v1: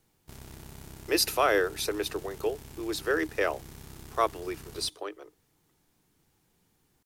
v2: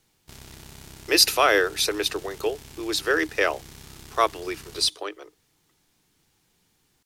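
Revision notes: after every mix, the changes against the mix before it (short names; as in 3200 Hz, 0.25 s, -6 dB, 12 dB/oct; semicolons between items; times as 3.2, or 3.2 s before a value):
speech +3.0 dB; master: add bell 4100 Hz +7.5 dB 2.7 oct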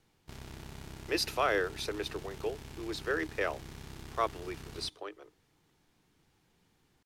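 speech -9.0 dB; master: add high shelf 3700 Hz -11.5 dB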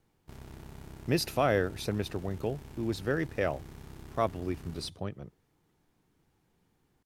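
speech: remove rippled Chebyshev high-pass 300 Hz, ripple 6 dB; master: add bell 4100 Hz -7.5 dB 2.7 oct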